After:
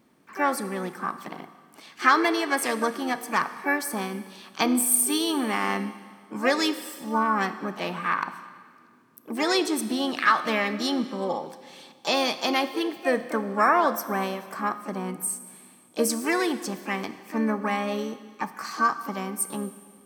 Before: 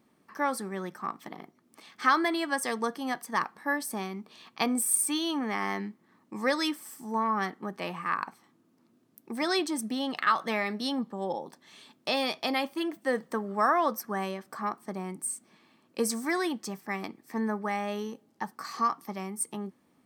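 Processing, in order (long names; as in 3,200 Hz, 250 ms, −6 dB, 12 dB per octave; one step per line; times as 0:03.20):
pitch-shifted copies added +5 semitones −9 dB
four-comb reverb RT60 1.8 s, combs from 25 ms, DRR 12 dB
level +4 dB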